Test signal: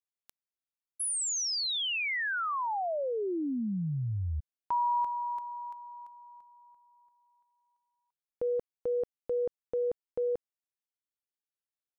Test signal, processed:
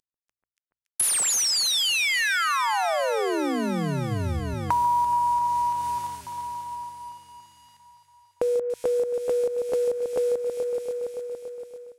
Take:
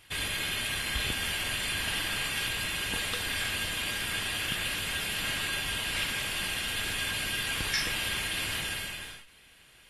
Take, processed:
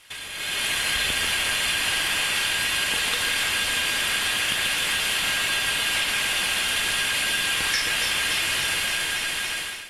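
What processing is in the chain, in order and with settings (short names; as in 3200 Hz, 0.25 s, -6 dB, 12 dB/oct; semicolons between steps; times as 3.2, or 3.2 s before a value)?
CVSD 64 kbps; low shelf 350 Hz -11 dB; on a send: echo with dull and thin repeats by turns 0.142 s, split 1800 Hz, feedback 81%, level -6 dB; on the sum: compressor 4:1, threshold -42 dBFS; notches 60/120 Hz; AGC gain up to 13.5 dB; gain +5 dB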